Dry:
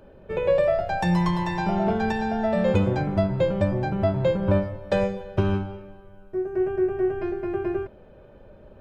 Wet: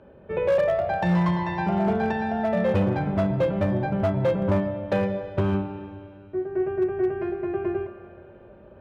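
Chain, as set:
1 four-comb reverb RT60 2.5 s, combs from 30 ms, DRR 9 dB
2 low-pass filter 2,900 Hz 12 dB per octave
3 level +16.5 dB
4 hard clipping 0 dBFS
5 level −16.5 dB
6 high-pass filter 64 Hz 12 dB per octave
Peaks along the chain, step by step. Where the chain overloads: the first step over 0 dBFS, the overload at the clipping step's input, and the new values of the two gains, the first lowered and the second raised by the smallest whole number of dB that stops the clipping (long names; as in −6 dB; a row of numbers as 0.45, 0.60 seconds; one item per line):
−9.5, −9.5, +7.0, 0.0, −16.5, −11.0 dBFS
step 3, 7.0 dB
step 3 +9.5 dB, step 5 −9.5 dB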